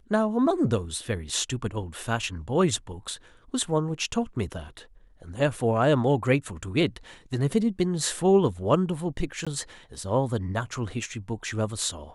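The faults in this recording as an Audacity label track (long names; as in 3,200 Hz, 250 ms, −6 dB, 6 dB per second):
9.450000	9.470000	drop-out 16 ms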